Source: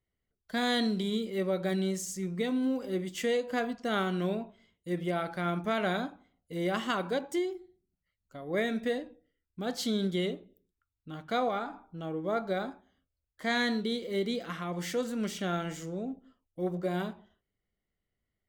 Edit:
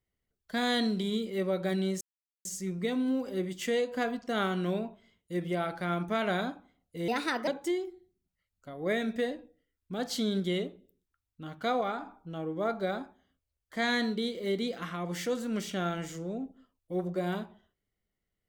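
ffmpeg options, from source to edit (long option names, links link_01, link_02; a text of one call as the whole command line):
ffmpeg -i in.wav -filter_complex "[0:a]asplit=4[link_01][link_02][link_03][link_04];[link_01]atrim=end=2.01,asetpts=PTS-STARTPTS,afade=type=out:start_time=2.006:duration=0.004:curve=hsin,apad=pad_dur=0.44[link_05];[link_02]atrim=start=2.01:end=6.644,asetpts=PTS-STARTPTS,afade=type=in:duration=0.004:curve=hsin[link_06];[link_03]atrim=start=6.64:end=7.15,asetpts=PTS-STARTPTS,asetrate=56889,aresample=44100[link_07];[link_04]atrim=start=7.146[link_08];[link_05][link_06]concat=n=2:v=0:a=1[link_09];[link_09][link_07]acrossfade=duration=0.004:curve1=hsin:curve2=hsin[link_10];[link_10][link_08]acrossfade=duration=0.004:curve1=hsin:curve2=hsin" out.wav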